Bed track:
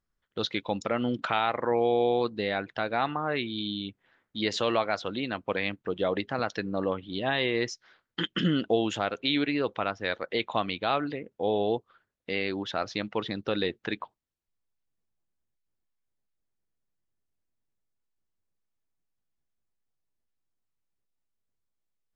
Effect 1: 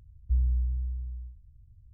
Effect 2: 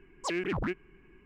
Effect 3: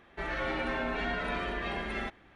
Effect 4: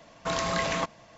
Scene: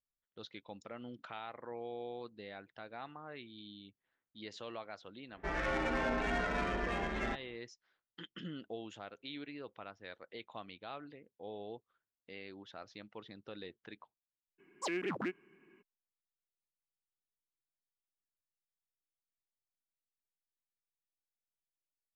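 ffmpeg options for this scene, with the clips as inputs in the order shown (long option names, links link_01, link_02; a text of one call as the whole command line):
ffmpeg -i bed.wav -i cue0.wav -i cue1.wav -i cue2.wav -filter_complex "[0:a]volume=-19dB[link_01];[3:a]adynamicsmooth=sensitivity=5:basefreq=1500[link_02];[2:a]highpass=frequency=180:width=0.5412,highpass=frequency=180:width=1.3066[link_03];[link_02]atrim=end=2.35,asetpts=PTS-STARTPTS,volume=-1dB,afade=type=in:duration=0.1,afade=type=out:start_time=2.25:duration=0.1,adelay=5260[link_04];[link_03]atrim=end=1.25,asetpts=PTS-STARTPTS,volume=-4.5dB,afade=type=in:duration=0.02,afade=type=out:start_time=1.23:duration=0.02,adelay=14580[link_05];[link_01][link_04][link_05]amix=inputs=3:normalize=0" out.wav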